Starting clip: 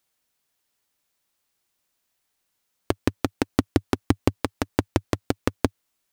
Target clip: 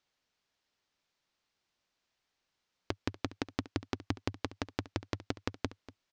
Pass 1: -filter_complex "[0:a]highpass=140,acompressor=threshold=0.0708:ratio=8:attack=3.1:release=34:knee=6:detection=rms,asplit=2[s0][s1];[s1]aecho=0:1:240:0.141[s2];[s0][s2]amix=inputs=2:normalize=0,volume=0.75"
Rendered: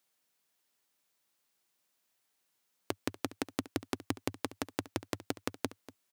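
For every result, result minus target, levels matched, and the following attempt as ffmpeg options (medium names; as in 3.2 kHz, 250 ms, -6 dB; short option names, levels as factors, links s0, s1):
8 kHz band +7.0 dB; 125 Hz band -5.5 dB
-filter_complex "[0:a]highpass=140,acompressor=threshold=0.0708:ratio=8:attack=3.1:release=34:knee=6:detection=rms,lowpass=f=5800:w=0.5412,lowpass=f=5800:w=1.3066,asplit=2[s0][s1];[s1]aecho=0:1:240:0.141[s2];[s0][s2]amix=inputs=2:normalize=0,volume=0.75"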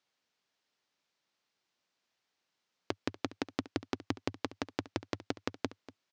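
125 Hz band -5.5 dB
-filter_complex "[0:a]acompressor=threshold=0.0708:ratio=8:attack=3.1:release=34:knee=6:detection=rms,lowpass=f=5800:w=0.5412,lowpass=f=5800:w=1.3066,asplit=2[s0][s1];[s1]aecho=0:1:240:0.141[s2];[s0][s2]amix=inputs=2:normalize=0,volume=0.75"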